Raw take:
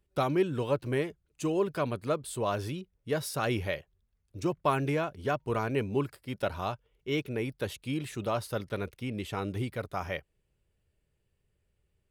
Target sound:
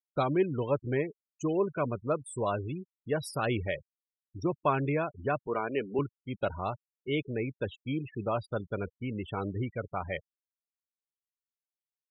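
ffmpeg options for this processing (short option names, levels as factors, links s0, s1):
-filter_complex "[0:a]asettb=1/sr,asplit=3[s0][s1][s2];[s0]atrim=end=5.474[s3];[s1]atrim=start=5.47:end=5.99,asetpts=PTS-STARTPTS,afade=t=in:d=0.004:c=qsin,afade=t=out:st=0.516:d=0.004:c=qsin,highpass=260[s4];[s2]atrim=start=5.986[s5];[s3][s4]acrossfade=d=0.004:c1=hsin:c2=qsin[s6];[s6][s5]acrossfade=d=0.004:c1=qsin:c2=hsin,afftfilt=real='re*gte(hypot(re,im),0.02)':imag='im*gte(hypot(re,im),0.02)':win_size=1024:overlap=0.75"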